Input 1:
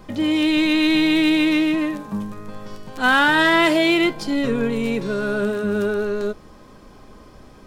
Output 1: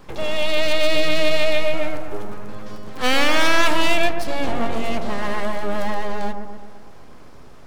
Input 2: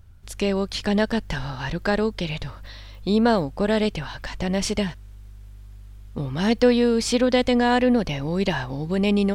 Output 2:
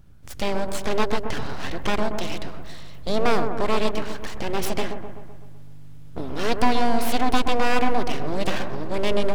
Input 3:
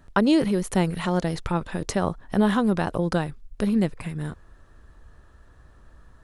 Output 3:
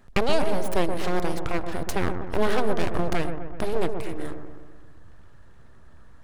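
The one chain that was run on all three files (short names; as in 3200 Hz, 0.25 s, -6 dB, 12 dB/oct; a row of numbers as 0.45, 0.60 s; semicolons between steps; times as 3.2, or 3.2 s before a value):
full-wave rectifier; dark delay 0.127 s, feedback 56%, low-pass 1300 Hz, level -6 dB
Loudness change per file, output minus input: -3.0, -3.0, -3.5 LU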